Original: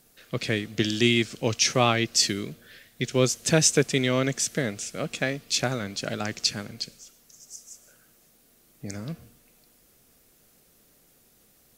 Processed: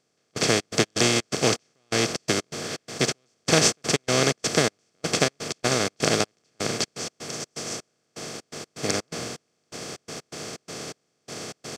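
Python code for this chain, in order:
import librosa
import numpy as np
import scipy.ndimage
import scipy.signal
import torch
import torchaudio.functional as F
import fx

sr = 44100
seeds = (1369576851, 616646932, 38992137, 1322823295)

y = fx.bin_compress(x, sr, power=0.2)
y = fx.step_gate(y, sr, bpm=125, pattern='...xx.x.xx.xx', floor_db=-24.0, edge_ms=4.5)
y = fx.upward_expand(y, sr, threshold_db=-29.0, expansion=2.5)
y = y * librosa.db_to_amplitude(-3.0)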